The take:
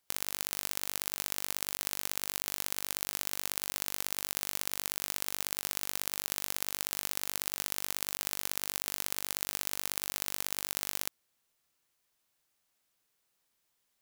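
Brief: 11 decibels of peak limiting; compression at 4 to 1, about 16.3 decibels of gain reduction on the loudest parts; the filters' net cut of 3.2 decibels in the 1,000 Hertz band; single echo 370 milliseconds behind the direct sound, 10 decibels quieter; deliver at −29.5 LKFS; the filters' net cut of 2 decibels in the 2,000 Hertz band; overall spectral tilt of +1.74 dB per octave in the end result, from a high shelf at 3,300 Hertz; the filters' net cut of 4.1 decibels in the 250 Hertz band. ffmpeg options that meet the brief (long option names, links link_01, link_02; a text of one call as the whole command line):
ffmpeg -i in.wav -af "equalizer=frequency=250:width_type=o:gain=-5.5,equalizer=frequency=1000:width_type=o:gain=-3.5,equalizer=frequency=2000:width_type=o:gain=-4.5,highshelf=frequency=3300:gain=8,acompressor=threshold=-40dB:ratio=4,alimiter=limit=-23dB:level=0:latency=1,aecho=1:1:370:0.316,volume=19dB" out.wav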